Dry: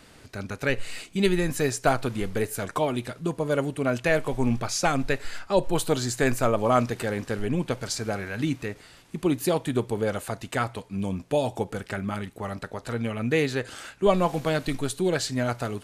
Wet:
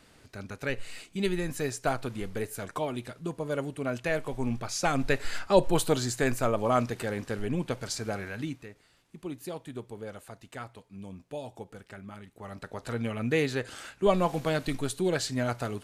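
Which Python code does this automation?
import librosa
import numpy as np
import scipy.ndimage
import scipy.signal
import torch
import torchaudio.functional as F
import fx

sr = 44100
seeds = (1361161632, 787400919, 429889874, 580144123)

y = fx.gain(x, sr, db=fx.line((4.63, -6.5), (5.37, 2.5), (6.27, -4.0), (8.29, -4.0), (8.69, -14.0), (12.24, -14.0), (12.8, -3.0)))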